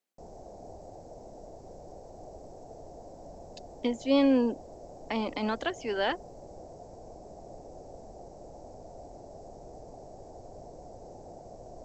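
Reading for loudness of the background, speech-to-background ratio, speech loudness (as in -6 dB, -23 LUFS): -48.0 LUFS, 19.0 dB, -29.0 LUFS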